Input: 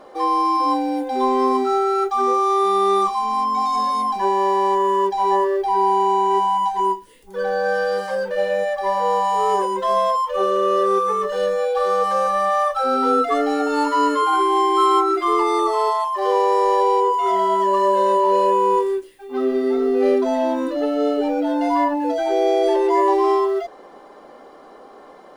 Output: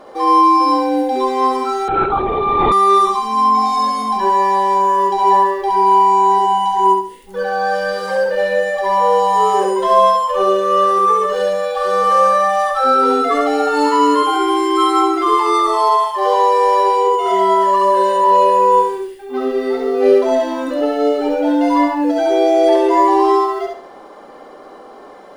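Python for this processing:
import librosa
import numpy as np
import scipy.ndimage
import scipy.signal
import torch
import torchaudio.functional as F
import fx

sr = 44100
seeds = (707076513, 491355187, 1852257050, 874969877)

p1 = x + fx.echo_feedback(x, sr, ms=68, feedback_pct=33, wet_db=-3.0, dry=0)
p2 = fx.lpc_vocoder(p1, sr, seeds[0], excitation='whisper', order=16, at=(1.88, 2.72))
y = p2 * librosa.db_to_amplitude(3.5)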